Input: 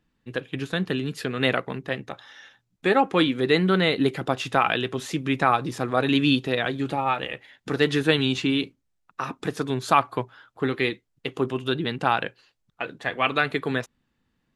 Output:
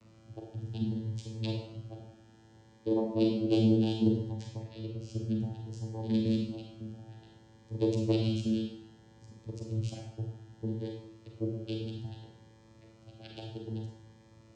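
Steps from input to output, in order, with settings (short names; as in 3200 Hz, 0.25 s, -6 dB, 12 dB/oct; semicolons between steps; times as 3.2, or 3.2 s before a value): per-bin expansion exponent 2; elliptic band-stop 510–3300 Hz; bell 5200 Hz +11 dB 0.75 oct; 6.15–6.98 level quantiser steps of 13 dB; added noise pink -52 dBFS; vocoder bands 8, saw 111 Hz; 4.31–5.23 air absorption 57 m; Schroeder reverb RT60 0.68 s, combs from 33 ms, DRR 0 dB; cascading phaser rising 0.62 Hz; gain -1 dB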